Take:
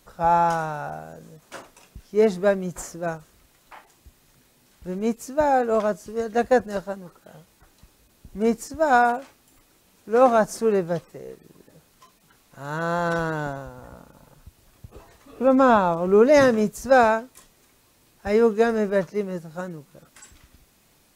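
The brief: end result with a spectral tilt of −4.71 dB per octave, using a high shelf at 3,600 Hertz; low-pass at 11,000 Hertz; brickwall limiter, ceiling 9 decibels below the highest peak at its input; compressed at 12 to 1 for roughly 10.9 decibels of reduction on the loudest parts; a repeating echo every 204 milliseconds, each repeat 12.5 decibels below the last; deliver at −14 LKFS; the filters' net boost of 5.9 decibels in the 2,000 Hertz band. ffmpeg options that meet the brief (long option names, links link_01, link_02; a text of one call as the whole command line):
ffmpeg -i in.wav -af "lowpass=11000,equalizer=frequency=2000:width_type=o:gain=7.5,highshelf=frequency=3600:gain=4,acompressor=threshold=-21dB:ratio=12,alimiter=limit=-22.5dB:level=0:latency=1,aecho=1:1:204|408|612:0.237|0.0569|0.0137,volume=18.5dB" out.wav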